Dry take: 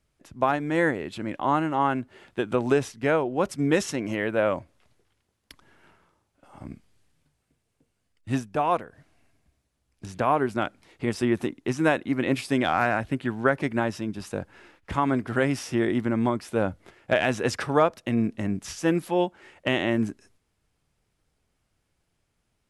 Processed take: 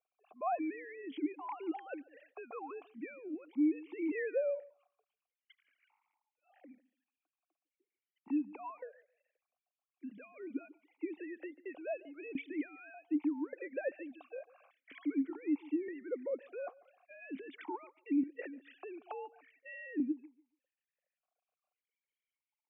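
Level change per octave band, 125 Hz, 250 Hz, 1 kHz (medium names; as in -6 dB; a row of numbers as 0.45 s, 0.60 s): under -35 dB, -10.5 dB, -18.5 dB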